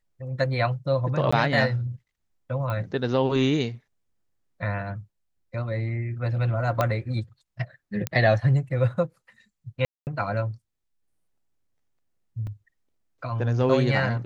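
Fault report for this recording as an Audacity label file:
1.310000	1.320000	drop-out 15 ms
2.700000	2.700000	click −19 dBFS
6.810000	6.810000	click −10 dBFS
8.070000	8.070000	click −10 dBFS
9.850000	10.070000	drop-out 219 ms
12.470000	12.470000	drop-out 2.5 ms

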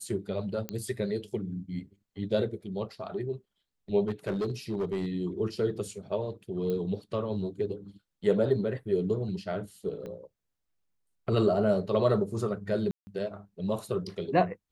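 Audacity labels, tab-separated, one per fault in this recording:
0.690000	0.690000	click −18 dBFS
4.070000	5.070000	clipping −26 dBFS
6.700000	6.700000	click −22 dBFS
10.060000	10.060000	click −29 dBFS
12.910000	13.070000	drop-out 160 ms

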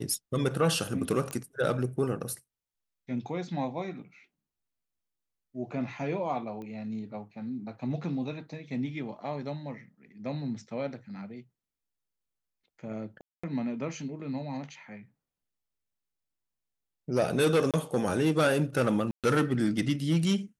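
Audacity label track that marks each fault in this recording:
1.310000	1.310000	click −22 dBFS
6.620000	6.620000	click −31 dBFS
13.210000	13.440000	drop-out 225 ms
17.710000	17.740000	drop-out 27 ms
19.110000	19.240000	drop-out 127 ms

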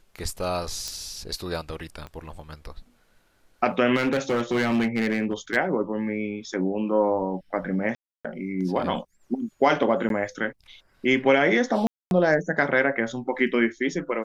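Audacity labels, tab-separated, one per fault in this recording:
0.880000	0.880000	click −16 dBFS
2.070000	2.070000	click −25 dBFS
3.950000	5.570000	clipping −18.5 dBFS
7.950000	8.250000	drop-out 296 ms
10.090000	10.100000	drop-out 12 ms
11.870000	12.110000	drop-out 241 ms

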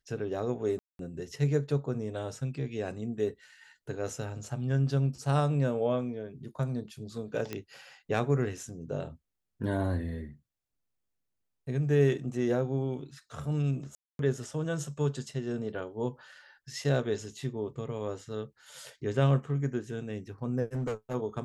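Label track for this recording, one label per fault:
0.790000	0.990000	drop-out 202 ms
7.530000	7.530000	click −20 dBFS
13.950000	14.190000	drop-out 242 ms
20.740000	21.150000	clipping −28.5 dBFS

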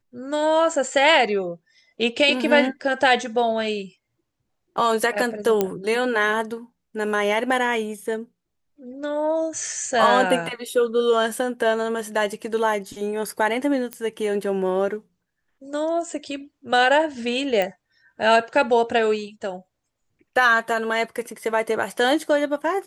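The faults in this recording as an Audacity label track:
5.610000	5.610000	click −7 dBFS
13.930000	13.930000	click −13 dBFS
17.620000	17.620000	click −11 dBFS

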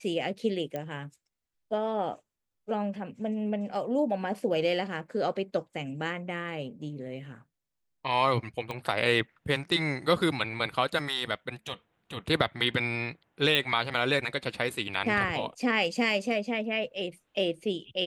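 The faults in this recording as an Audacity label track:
0.760000	0.760000	click −21 dBFS
8.710000	8.710000	click −21 dBFS
13.550000	13.550000	click −11 dBFS

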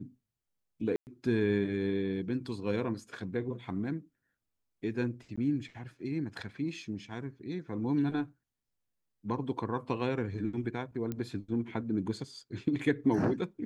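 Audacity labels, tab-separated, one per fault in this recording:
0.960000	1.070000	drop-out 109 ms
5.360000	5.380000	drop-out 15 ms
11.120000	11.120000	click −23 dBFS

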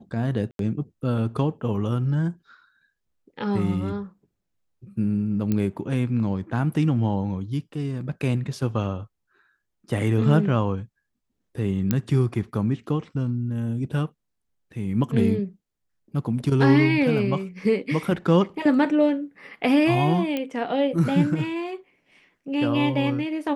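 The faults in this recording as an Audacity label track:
0.510000	0.590000	drop-out 82 ms
5.520000	5.520000	click −13 dBFS
11.910000	11.910000	click −8 dBFS
20.370000	20.370000	click −14 dBFS

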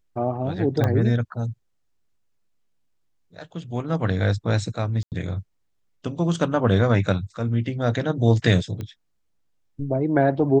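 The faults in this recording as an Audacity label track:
0.840000	0.840000	click −11 dBFS
5.030000	5.120000	drop-out 88 ms
8.810000	8.810000	click −20 dBFS

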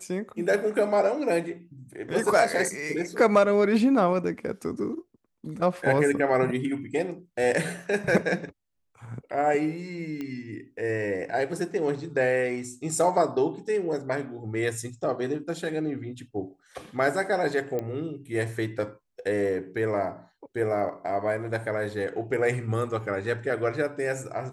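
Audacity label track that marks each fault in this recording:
10.210000	10.210000	click −22 dBFS
17.790000	17.790000	click −19 dBFS

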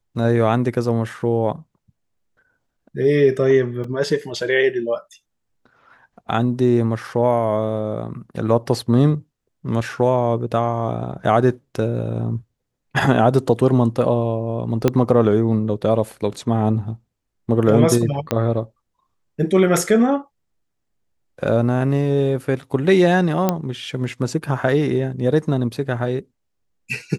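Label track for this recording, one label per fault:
3.840000	3.840000	drop-out 3.5 ms
14.880000	14.880000	click −4 dBFS
18.310000	18.310000	click −5 dBFS
23.490000	23.490000	click −4 dBFS

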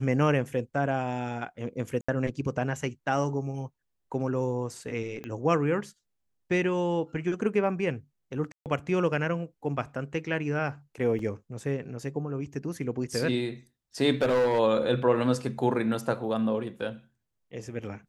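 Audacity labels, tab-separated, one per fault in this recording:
2.010000	2.080000	drop-out 75 ms
5.240000	5.240000	click −24 dBFS
8.520000	8.660000	drop-out 138 ms
11.190000	11.190000	drop-out 3 ms
14.220000	14.600000	clipping −20 dBFS

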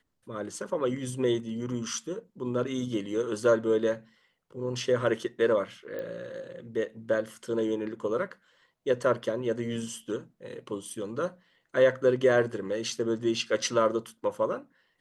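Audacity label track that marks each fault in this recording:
5.990000	5.990000	click −25 dBFS

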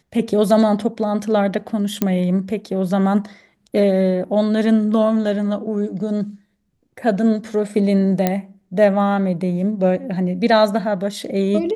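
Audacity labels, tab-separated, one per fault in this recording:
2.020000	2.020000	click −5 dBFS
8.270000	8.270000	click −4 dBFS

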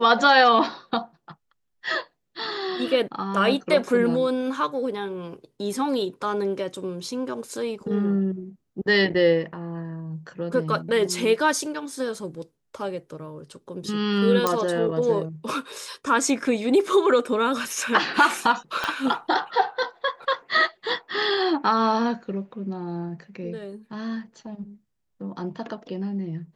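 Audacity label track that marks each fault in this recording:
14.470000	14.470000	click −7 dBFS
18.840000	18.840000	click −12 dBFS

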